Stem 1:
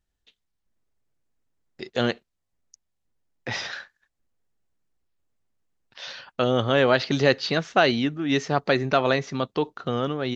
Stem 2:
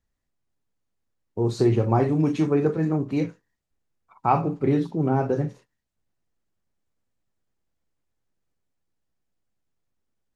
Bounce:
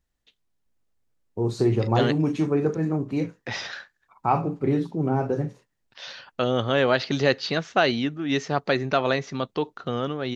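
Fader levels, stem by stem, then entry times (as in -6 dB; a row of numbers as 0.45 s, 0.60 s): -1.5 dB, -1.5 dB; 0.00 s, 0.00 s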